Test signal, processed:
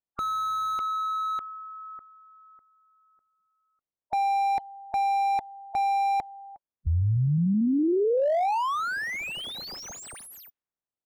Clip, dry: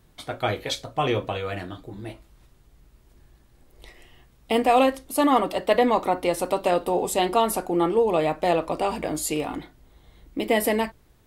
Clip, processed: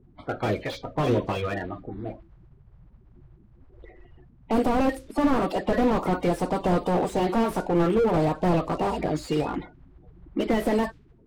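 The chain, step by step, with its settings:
spectral magnitudes quantised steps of 30 dB
low-pass that shuts in the quiet parts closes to 920 Hz, open at −19.5 dBFS
slew-rate limiting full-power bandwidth 38 Hz
level +3 dB

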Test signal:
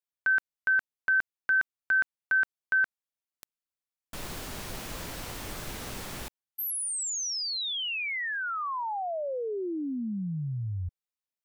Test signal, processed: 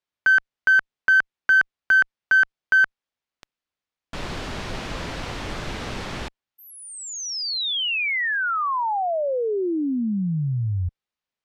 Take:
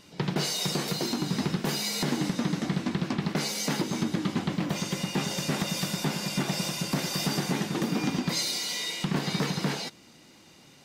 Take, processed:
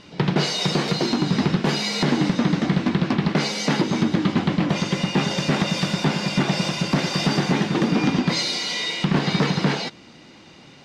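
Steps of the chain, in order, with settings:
low-pass filter 4,300 Hz 12 dB per octave
in parallel at −3 dB: asymmetric clip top −23.5 dBFS, bottom −20 dBFS
on the sum: level +4 dB

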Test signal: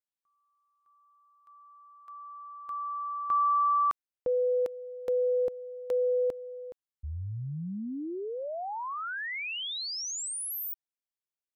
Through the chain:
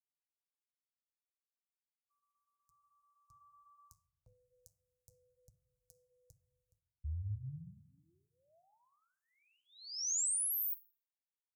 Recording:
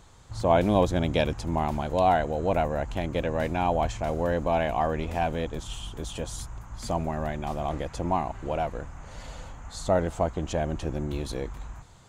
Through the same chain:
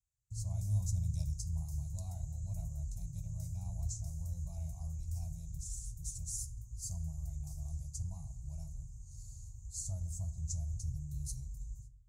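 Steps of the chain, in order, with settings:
flanger 0.35 Hz, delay 4.5 ms, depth 9.9 ms, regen −60%
parametric band 640 Hz +6.5 dB 0.58 octaves
noise gate −50 dBFS, range −29 dB
high-pass filter 49 Hz
rectangular room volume 1,900 cubic metres, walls furnished, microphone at 0.71 metres
dynamic equaliser 5,900 Hz, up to +4 dB, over −51 dBFS, Q 0.87
inverse Chebyshev band-stop filter 220–3,400 Hz, stop band 40 dB
level +3 dB

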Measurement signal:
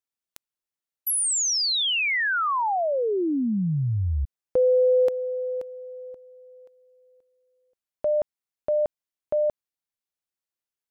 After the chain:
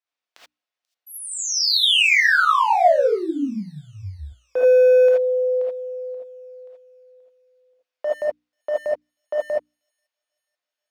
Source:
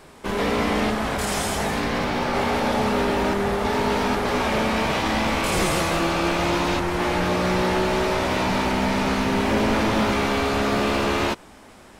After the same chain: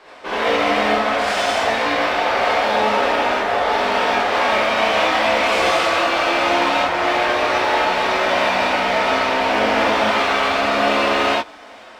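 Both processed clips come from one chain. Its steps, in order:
three-way crossover with the lows and the highs turned down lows −20 dB, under 360 Hz, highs −22 dB, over 5,100 Hz
mains-hum notches 60/120/180/240/300 Hz
in parallel at −10.5 dB: wave folding −26 dBFS
on the sum: delay with a high-pass on its return 486 ms, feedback 58%, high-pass 5,600 Hz, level −22 dB
reverb whose tail is shaped and stops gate 100 ms rising, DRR −6 dB

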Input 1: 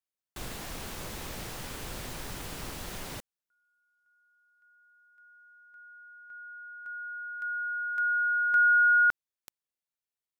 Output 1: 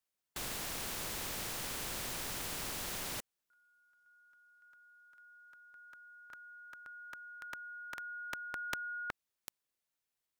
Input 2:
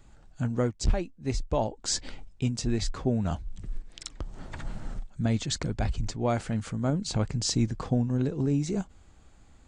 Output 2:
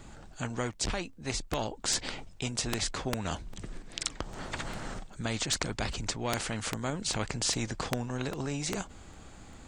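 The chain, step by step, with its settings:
regular buffer underruns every 0.40 s, samples 128, repeat, from 0:00.33
every bin compressed towards the loudest bin 2 to 1
level +3 dB

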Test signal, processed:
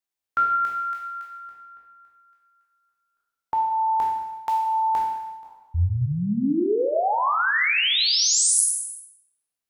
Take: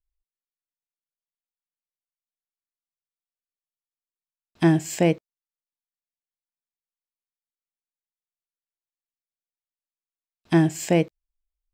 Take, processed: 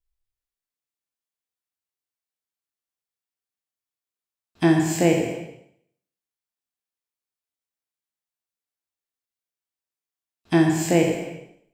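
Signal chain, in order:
peak hold with a decay on every bin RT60 0.65 s
reverb whose tail is shaped and stops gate 390 ms falling, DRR 3.5 dB
level −1 dB

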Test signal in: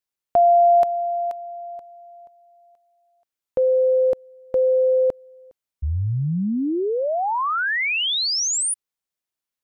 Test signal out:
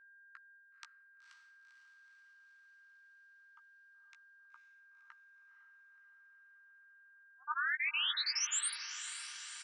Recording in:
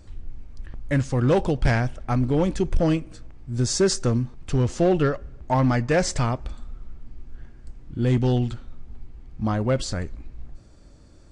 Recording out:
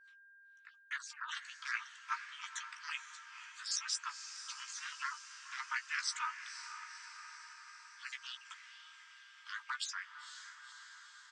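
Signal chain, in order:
time-frequency cells dropped at random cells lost 30%
reverb reduction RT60 0.82 s
Chebyshev high-pass filter 1,200 Hz, order 10
downward expander −59 dBFS
low-pass filter 7,500 Hz 24 dB per octave
reverb reduction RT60 0.71 s
reversed playback
downward compressor 6 to 1, threshold −32 dBFS
reversed playback
amplitude modulation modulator 290 Hz, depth 85%
steady tone 1,600 Hz −63 dBFS
double-tracking delay 15 ms −8 dB
feedback delay with all-pass diffusion 504 ms, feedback 66%, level −10 dB
level +1.5 dB

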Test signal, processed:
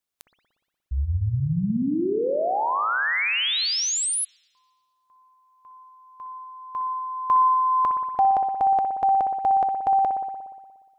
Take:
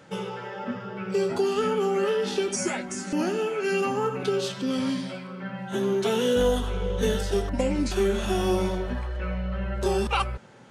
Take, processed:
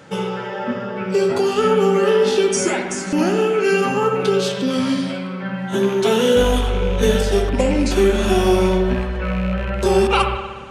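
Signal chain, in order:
loose part that buzzes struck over −26 dBFS, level −30 dBFS
spring reverb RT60 1.4 s, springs 59 ms, chirp 55 ms, DRR 5 dB
level +7.5 dB

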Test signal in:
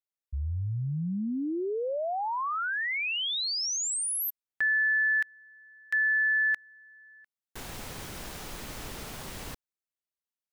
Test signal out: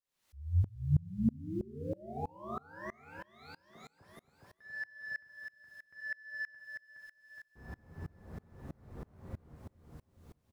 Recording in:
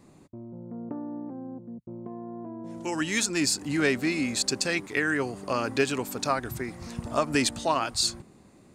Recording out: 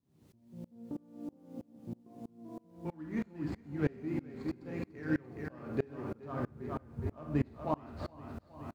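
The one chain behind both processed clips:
running median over 15 samples
high-pass filter 73 Hz 12 dB per octave
high-shelf EQ 5,000 Hz −9.5 dB
background noise blue −51 dBFS
RIAA equalisation playback
flanger 0.46 Hz, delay 6.8 ms, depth 8.3 ms, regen +59%
double-tracking delay 13 ms −10.5 dB
repeating echo 418 ms, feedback 55%, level −6 dB
four-comb reverb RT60 0.53 s, combs from 32 ms, DRR 5 dB
tremolo with a ramp in dB swelling 3.1 Hz, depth 28 dB
level −3.5 dB

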